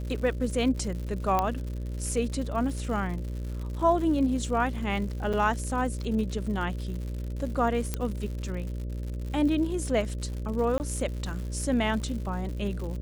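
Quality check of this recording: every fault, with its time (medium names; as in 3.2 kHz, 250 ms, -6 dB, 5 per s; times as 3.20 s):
buzz 60 Hz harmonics 10 -33 dBFS
crackle 140 per s -36 dBFS
1.39 s: pop -12 dBFS
5.33–5.34 s: dropout 6 ms
7.94 s: pop -14 dBFS
10.78–10.80 s: dropout 19 ms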